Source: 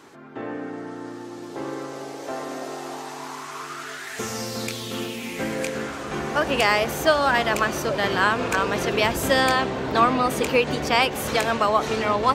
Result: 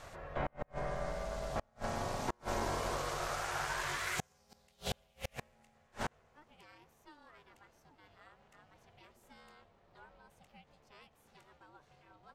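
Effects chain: ring modulator 300 Hz; flipped gate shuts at -22 dBFS, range -37 dB

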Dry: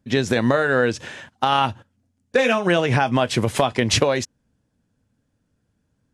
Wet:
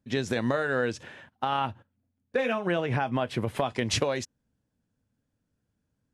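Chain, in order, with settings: 1.03–3.66 bell 6800 Hz -11.5 dB 1.5 oct; gain -8.5 dB

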